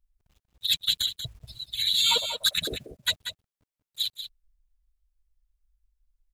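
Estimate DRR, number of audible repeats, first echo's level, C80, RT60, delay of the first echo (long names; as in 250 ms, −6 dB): no reverb audible, 1, −9.5 dB, no reverb audible, no reverb audible, 187 ms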